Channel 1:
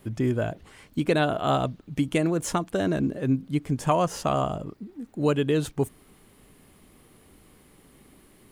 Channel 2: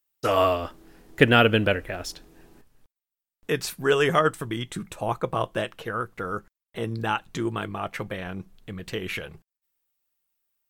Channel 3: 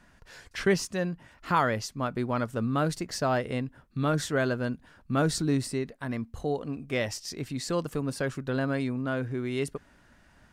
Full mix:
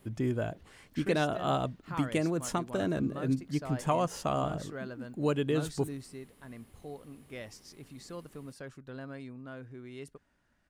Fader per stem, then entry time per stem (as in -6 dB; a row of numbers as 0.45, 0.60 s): -6.0 dB, off, -14.5 dB; 0.00 s, off, 0.40 s